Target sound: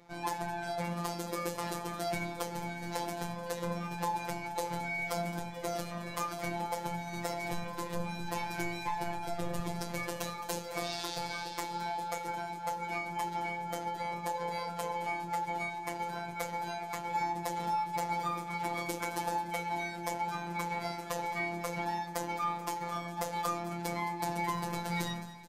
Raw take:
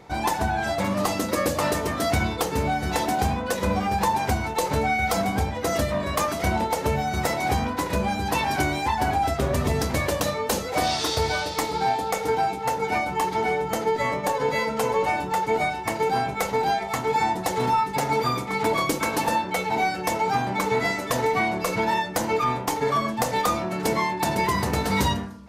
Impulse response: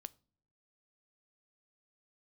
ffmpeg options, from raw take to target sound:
-filter_complex "[0:a]asettb=1/sr,asplit=3[a][b][c];[a]atrim=end=7.344[d];[b]atrim=start=7.34:end=9.6,asetpts=PTS-STARTPTS,afade=t=in:d=0.004:c=qsin,afade=t=out:st=2.256:d=0.004:c=qsin,equalizer=f=74:t=o:w=0.51:g=14.5[e];[c]atrim=start=9.596[f];[d][e]acrossfade=d=0.004:c1=hsin:c2=qsin[g];[g][f]acrossfade=d=0.004:c1=qsin:c2=hsin,afftfilt=real='hypot(re,im)*cos(PI*b)':imag='0':win_size=1024:overlap=0.75,aecho=1:1:216|432|648|864|1080:0.188|0.104|0.057|0.0313|0.0172,volume=-8.5dB"

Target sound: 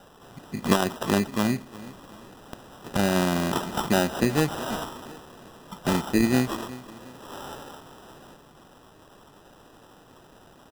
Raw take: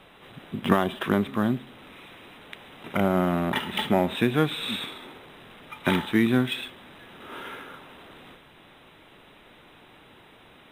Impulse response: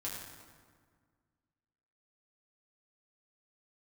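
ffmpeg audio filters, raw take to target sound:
-af "aecho=1:1:364|728|1092:0.126|0.0453|0.0163,acrusher=samples=20:mix=1:aa=0.000001"

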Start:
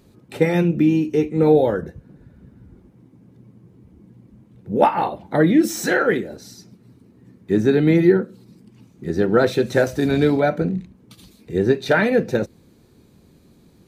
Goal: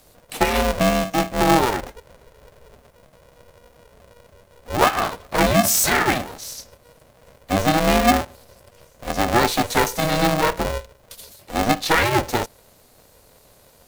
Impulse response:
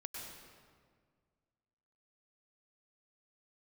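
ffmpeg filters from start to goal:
-af "afreqshift=120,crystalizer=i=4:c=0,aeval=exprs='val(0)*sgn(sin(2*PI*240*n/s))':c=same,volume=-2.5dB"

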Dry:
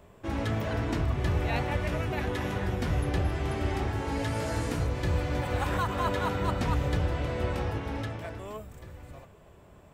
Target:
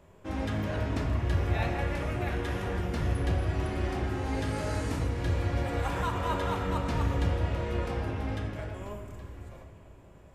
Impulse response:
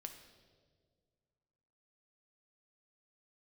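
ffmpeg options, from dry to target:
-filter_complex "[1:a]atrim=start_sample=2205,asetrate=26460,aresample=44100[a];[0:a][a]afir=irnorm=-1:irlink=0,asetrate=42336,aresample=44100"

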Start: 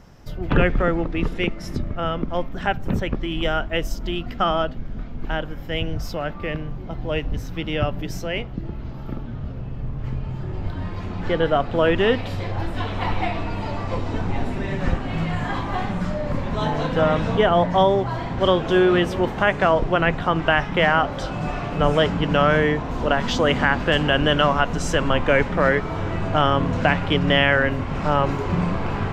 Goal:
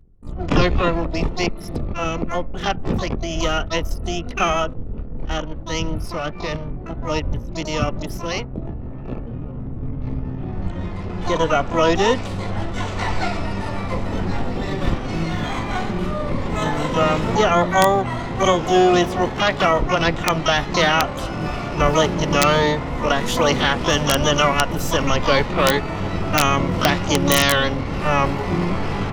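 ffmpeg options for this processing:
-filter_complex "[0:a]anlmdn=2.51,asplit=2[a][b];[b]asetrate=88200,aresample=44100,atempo=0.5,volume=-4dB[c];[a][c]amix=inputs=2:normalize=0,aeval=exprs='(mod(1.41*val(0)+1,2)-1)/1.41':c=same,bandreject=f=1.6k:w=11"

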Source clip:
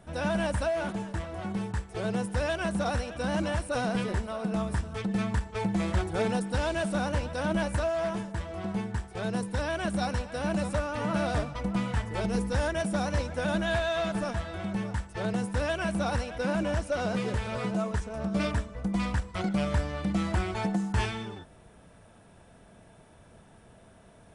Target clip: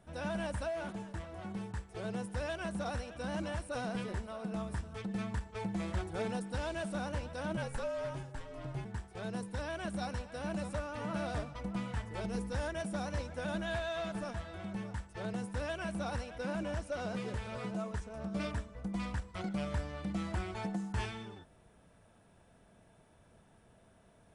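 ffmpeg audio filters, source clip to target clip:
-filter_complex "[0:a]asplit=3[a][b][c];[a]afade=t=out:st=7.56:d=0.02[d];[b]afreqshift=-61,afade=t=in:st=7.56:d=0.02,afade=t=out:st=8.84:d=0.02[e];[c]afade=t=in:st=8.84:d=0.02[f];[d][e][f]amix=inputs=3:normalize=0,volume=-8.5dB"

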